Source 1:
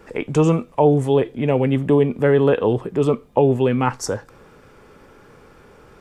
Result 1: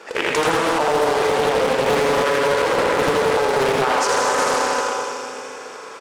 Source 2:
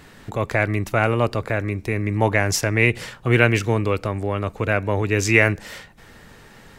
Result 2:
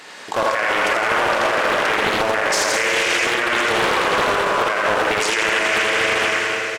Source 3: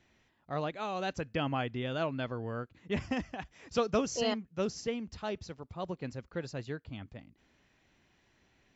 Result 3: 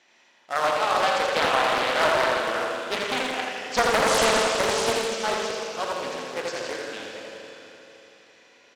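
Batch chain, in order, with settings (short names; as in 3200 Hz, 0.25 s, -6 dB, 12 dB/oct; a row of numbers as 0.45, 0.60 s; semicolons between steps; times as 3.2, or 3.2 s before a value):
Schroeder reverb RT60 3.7 s, combs from 31 ms, DRR 0.5 dB; in parallel at -8 dB: sample-and-hold 22×; on the sum: HPF 580 Hz 12 dB/oct; compressor, threshold -22 dBFS; dynamic EQ 1200 Hz, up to +6 dB, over -42 dBFS, Q 1.3; LPF 6400 Hz 12 dB/oct; high shelf 4900 Hz +9 dB; feedback echo 82 ms, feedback 54%, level -4 dB; limiter -17 dBFS; Doppler distortion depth 0.57 ms; normalise peaks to -9 dBFS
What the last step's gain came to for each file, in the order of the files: +8.0, +8.0, +8.0 dB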